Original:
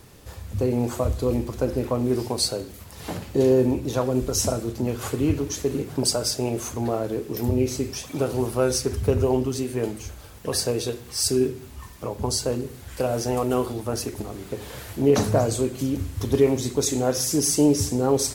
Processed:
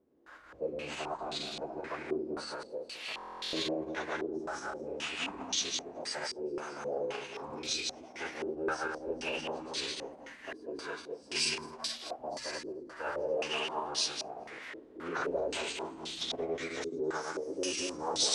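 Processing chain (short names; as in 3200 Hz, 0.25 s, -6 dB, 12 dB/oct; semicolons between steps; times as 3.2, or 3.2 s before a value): regenerating reverse delay 0.107 s, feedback 65%, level 0 dB; bell 160 Hz -2.5 dB 0.53 oct; in parallel at -3 dB: limiter -11 dBFS, peak gain reduction 8 dB; on the sum: formant-preserving pitch shift -8.5 st; differentiator; notches 60/120/180 Hz; stuck buffer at 3.16, samples 1024, times 15; stepped low-pass 3.8 Hz 380–3700 Hz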